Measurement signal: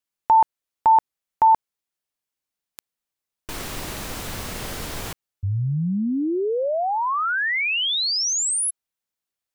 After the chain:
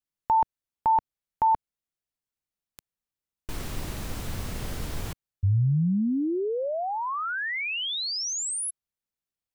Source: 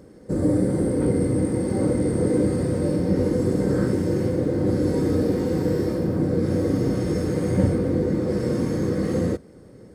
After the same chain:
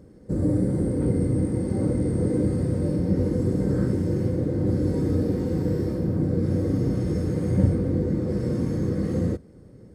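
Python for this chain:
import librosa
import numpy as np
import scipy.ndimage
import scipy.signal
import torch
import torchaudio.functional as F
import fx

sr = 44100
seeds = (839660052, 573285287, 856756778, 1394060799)

y = fx.low_shelf(x, sr, hz=240.0, db=11.0)
y = y * librosa.db_to_amplitude(-7.5)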